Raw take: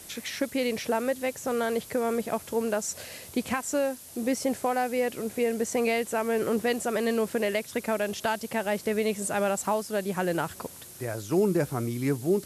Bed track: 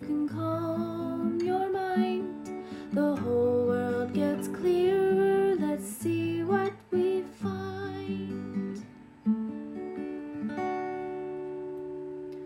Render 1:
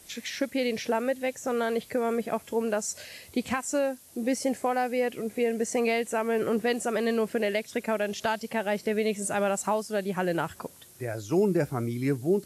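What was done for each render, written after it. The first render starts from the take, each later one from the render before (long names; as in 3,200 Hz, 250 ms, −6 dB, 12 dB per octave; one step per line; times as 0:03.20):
noise reduction from a noise print 7 dB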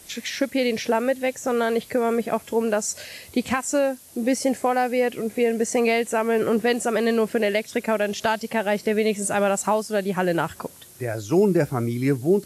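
level +5.5 dB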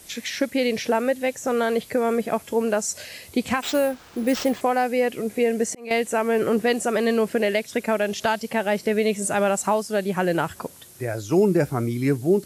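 0:03.62–0:04.61: bad sample-rate conversion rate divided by 4×, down none, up hold
0:05.32–0:05.91: volume swells 630 ms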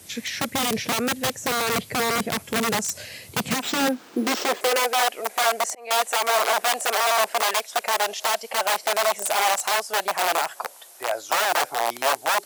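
wrap-around overflow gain 18 dB
high-pass filter sweep 100 Hz → 710 Hz, 0:03.19–0:05.02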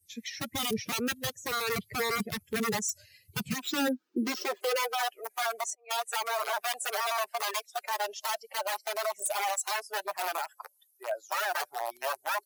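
spectral dynamics exaggerated over time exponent 2
brickwall limiter −21.5 dBFS, peak gain reduction 9 dB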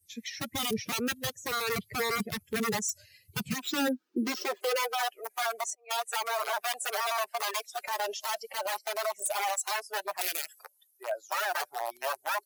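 0:07.56–0:08.79: transient designer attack −2 dB, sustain +7 dB
0:10.21–0:10.63: drawn EQ curve 510 Hz 0 dB, 970 Hz −28 dB, 1,900 Hz +3 dB, 8,700 Hz +9 dB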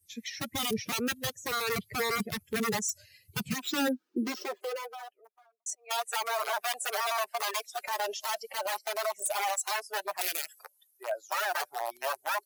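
0:03.86–0:05.66: fade out and dull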